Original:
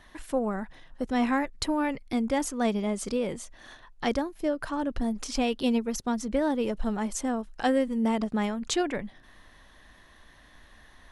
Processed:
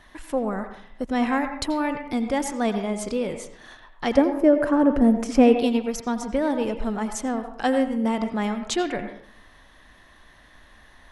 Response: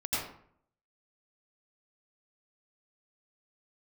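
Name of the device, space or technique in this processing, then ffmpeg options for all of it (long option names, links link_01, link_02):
filtered reverb send: -filter_complex "[0:a]asettb=1/sr,asplit=3[link_01][link_02][link_03];[link_01]atrim=end=4.174[link_04];[link_02]atrim=start=4.17:end=5.55,asetpts=PTS-STARTPTS,afade=type=in:duration=0.004:curve=qsin,afade=type=out:start_time=1.376:duration=0.004:curve=qsin,equalizer=frequency=125:width_type=o:width=1:gain=4,equalizer=frequency=250:width_type=o:width=1:gain=8,equalizer=frequency=500:width_type=o:width=1:gain=9,equalizer=frequency=2000:width_type=o:width=1:gain=5,equalizer=frequency=4000:width_type=o:width=1:gain=-9[link_05];[link_03]atrim=start=5.546[link_06];[link_04][link_05]acrossfade=duration=0.004:curve1=hsin:curve2=qsin[link_07];[link_07][link_06]acrossfade=duration=0.004:curve1=qsin:curve2=hsin,asplit=2[link_08][link_09];[link_09]highpass=frequency=440:poles=1,lowpass=3700[link_10];[1:a]atrim=start_sample=2205[link_11];[link_10][link_11]afir=irnorm=-1:irlink=0,volume=-11.5dB[link_12];[link_08][link_12]amix=inputs=2:normalize=0,volume=1.5dB"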